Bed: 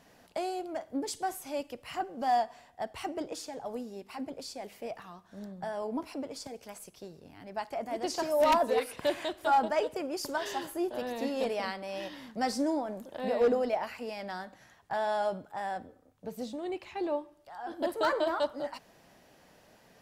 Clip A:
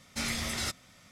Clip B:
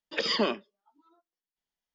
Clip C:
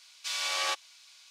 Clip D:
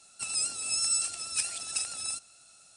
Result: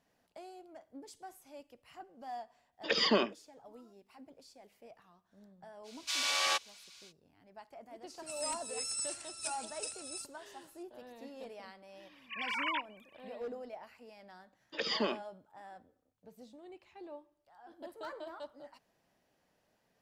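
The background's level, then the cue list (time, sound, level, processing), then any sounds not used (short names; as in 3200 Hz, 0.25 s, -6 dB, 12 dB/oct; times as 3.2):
bed -16 dB
2.72 add B -1.5 dB
5.83 add C -0.5 dB, fades 0.05 s
8.07 add D -10 dB
12.06 add C -5 dB + sine-wave speech
14.61 add B -6.5 dB
not used: A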